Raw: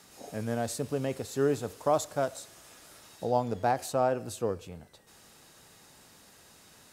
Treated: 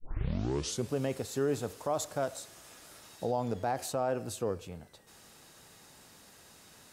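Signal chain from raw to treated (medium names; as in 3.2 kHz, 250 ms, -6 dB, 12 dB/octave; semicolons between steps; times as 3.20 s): tape start-up on the opening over 0.92 s; peak limiter -21 dBFS, peak gain reduction 7.5 dB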